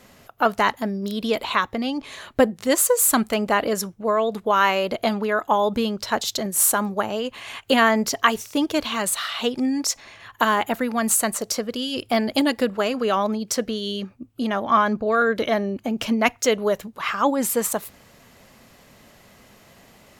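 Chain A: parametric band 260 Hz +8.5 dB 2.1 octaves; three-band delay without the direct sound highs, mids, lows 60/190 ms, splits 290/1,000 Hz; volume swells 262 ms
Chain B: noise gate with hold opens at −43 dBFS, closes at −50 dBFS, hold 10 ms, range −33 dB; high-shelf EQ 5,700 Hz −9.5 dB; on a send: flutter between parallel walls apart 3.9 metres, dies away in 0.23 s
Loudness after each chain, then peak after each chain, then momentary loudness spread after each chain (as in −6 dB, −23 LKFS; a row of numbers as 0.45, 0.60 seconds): −21.5, −21.5 LKFS; −4.0, −3.0 dBFS; 10, 8 LU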